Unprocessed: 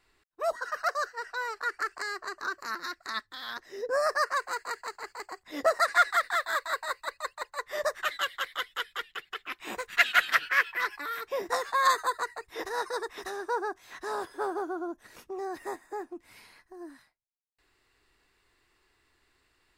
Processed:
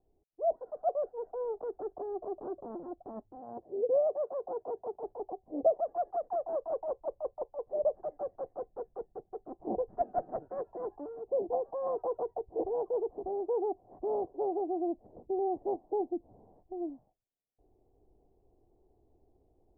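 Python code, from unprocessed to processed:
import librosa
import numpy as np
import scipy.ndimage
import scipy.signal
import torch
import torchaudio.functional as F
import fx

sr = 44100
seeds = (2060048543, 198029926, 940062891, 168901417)

y = fx.highpass(x, sr, hz=63.0, slope=12, at=(3.37, 5.03))
y = scipy.signal.sosfilt(scipy.signal.cheby1(5, 1.0, 760.0, 'lowpass', fs=sr, output='sos'), y)
y = fx.rider(y, sr, range_db=4, speed_s=0.5)
y = y * librosa.db_to_amplitude(4.5)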